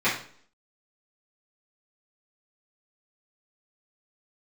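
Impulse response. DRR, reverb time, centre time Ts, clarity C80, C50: -12.0 dB, 0.55 s, 32 ms, 11.0 dB, 6.0 dB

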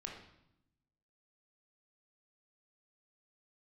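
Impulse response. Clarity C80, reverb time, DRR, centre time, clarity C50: 7.0 dB, 0.80 s, -0.5 dB, 38 ms, 4.0 dB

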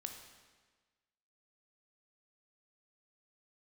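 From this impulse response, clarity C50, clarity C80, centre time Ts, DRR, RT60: 6.5 dB, 8.0 dB, 31 ms, 4.5 dB, 1.4 s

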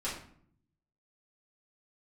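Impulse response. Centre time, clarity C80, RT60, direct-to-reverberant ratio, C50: 36 ms, 9.0 dB, 0.60 s, -9.5 dB, 5.0 dB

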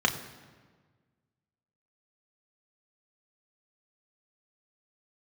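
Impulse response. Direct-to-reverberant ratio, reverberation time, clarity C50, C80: 2.5 dB, 1.5 s, 11.5 dB, 12.5 dB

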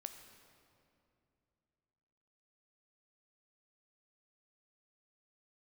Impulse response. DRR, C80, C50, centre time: 6.5 dB, 8.5 dB, 8.0 dB, 33 ms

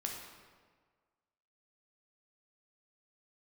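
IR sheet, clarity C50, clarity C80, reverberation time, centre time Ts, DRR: 2.5 dB, 4.5 dB, 1.6 s, 57 ms, 0.0 dB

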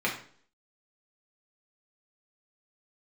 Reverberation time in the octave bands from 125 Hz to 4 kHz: 0.55, 0.55, 0.55, 0.50, 0.45, 0.45 s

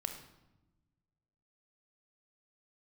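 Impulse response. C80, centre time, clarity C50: 10.5 dB, 19 ms, 7.5 dB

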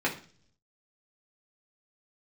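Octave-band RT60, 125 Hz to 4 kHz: 0.95, 0.70, 0.50, 0.40, 0.40, 0.55 s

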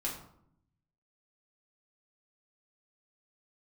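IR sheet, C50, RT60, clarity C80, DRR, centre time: 6.5 dB, 0.70 s, 9.5 dB, -4.0 dB, 30 ms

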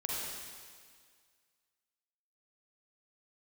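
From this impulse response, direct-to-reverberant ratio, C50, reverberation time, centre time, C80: -4.5 dB, -3.5 dB, 1.9 s, 0.129 s, -0.5 dB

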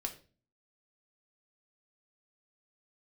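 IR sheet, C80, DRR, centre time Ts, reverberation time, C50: 16.5 dB, 3.5 dB, 10 ms, 0.35 s, 12.5 dB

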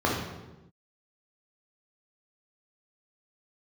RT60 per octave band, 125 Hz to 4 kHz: 1.3, 1.3, 1.1, 0.95, 0.85, 0.75 s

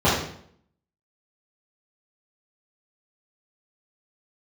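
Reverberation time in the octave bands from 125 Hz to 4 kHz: 0.70, 0.75, 0.65, 0.60, 0.55, 0.55 s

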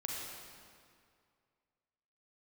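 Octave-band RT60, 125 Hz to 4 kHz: 2.3, 2.2, 2.2, 2.2, 1.9, 1.7 s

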